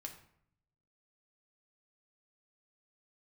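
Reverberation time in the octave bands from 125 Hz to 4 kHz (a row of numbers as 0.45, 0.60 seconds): 1.2, 0.90, 0.65, 0.65, 0.60, 0.45 seconds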